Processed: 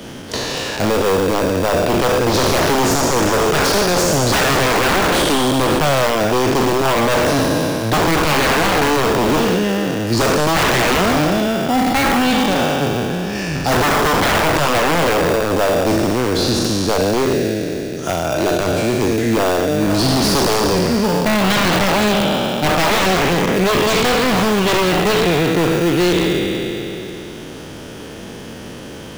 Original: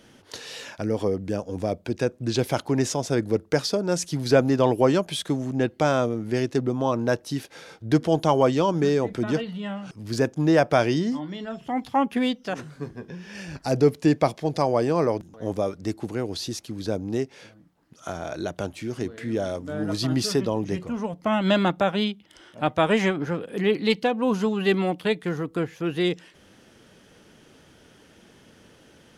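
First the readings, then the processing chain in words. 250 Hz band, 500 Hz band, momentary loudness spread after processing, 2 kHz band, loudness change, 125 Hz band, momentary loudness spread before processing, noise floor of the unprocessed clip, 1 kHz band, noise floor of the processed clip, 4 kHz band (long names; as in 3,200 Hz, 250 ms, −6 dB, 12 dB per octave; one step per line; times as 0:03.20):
+7.5 dB, +8.0 dB, 8 LU, +14.0 dB, +9.0 dB, +7.5 dB, 13 LU, −55 dBFS, +12.0 dB, −32 dBFS, +14.0 dB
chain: peak hold with a decay on every bin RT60 2.61 s
in parallel at −5 dB: sample-rate reduction 2,100 Hz
on the sum: wave folding −16 dBFS
multiband upward and downward compressor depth 40%
level +6 dB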